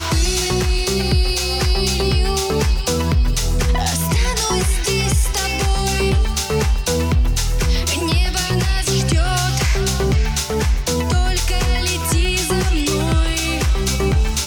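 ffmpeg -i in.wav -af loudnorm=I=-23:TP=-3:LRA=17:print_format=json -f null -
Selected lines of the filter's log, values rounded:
"input_i" : "-18.2",
"input_tp" : "-6.4",
"input_lra" : "0.3",
"input_thresh" : "-28.2",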